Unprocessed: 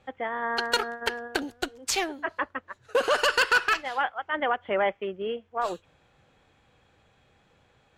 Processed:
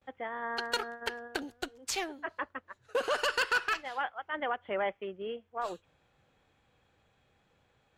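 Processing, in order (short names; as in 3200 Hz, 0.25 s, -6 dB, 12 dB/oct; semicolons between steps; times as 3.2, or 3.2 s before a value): gate with hold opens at -55 dBFS; gain -7 dB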